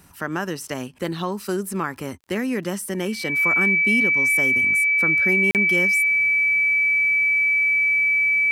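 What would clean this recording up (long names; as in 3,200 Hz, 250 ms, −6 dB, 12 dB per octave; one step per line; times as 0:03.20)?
click removal
notch filter 2,300 Hz, Q 30
repair the gap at 0:05.51, 38 ms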